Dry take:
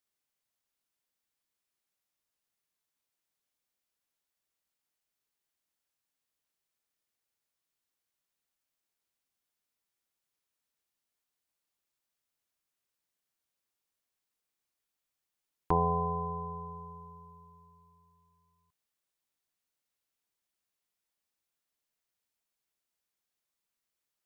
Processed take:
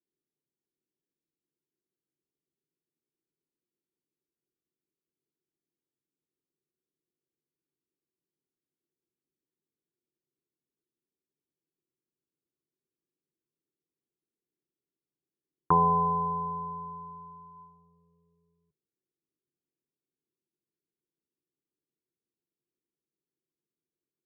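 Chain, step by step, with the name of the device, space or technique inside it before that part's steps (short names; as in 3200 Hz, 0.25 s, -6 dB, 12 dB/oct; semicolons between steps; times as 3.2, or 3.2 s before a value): envelope filter bass rig (envelope low-pass 350–1200 Hz up, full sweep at -53 dBFS; speaker cabinet 62–2000 Hz, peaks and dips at 92 Hz -7 dB, 150 Hz +8 dB, 670 Hz -10 dB)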